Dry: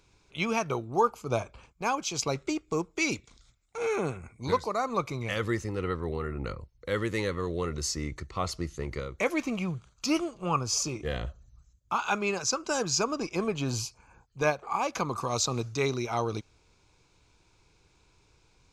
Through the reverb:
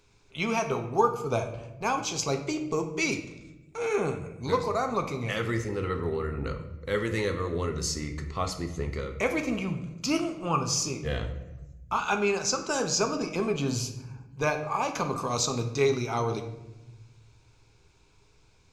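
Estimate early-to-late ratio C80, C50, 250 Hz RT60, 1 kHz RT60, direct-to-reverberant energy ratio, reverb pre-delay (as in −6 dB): 12.0 dB, 9.5 dB, 1.8 s, 0.85 s, 4.5 dB, 5 ms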